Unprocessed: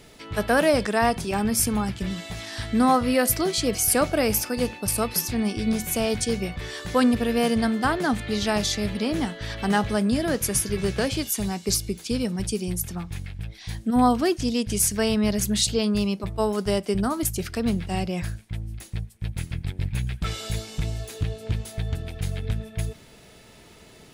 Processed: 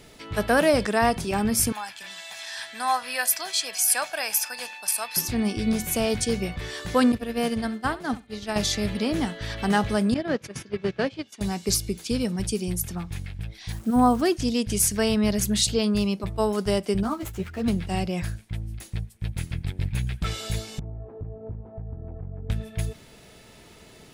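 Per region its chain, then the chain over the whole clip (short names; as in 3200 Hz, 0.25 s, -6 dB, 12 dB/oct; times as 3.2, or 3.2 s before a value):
1.72–5.17 HPF 1000 Hz + comb 1.2 ms, depth 47%
7.12–8.56 expander -18 dBFS + flutter echo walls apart 11.7 m, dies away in 0.24 s
10.14–11.41 gate -25 dBFS, range -15 dB + BPF 140–3500 Hz
13.72–14.22 band shelf 3200 Hz -9 dB + requantised 8-bit, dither none
17.03–17.68 median filter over 9 samples + ensemble effect
20.79–22.5 LPF 1000 Hz 24 dB/oct + compressor 4:1, threshold -32 dBFS
whole clip: dry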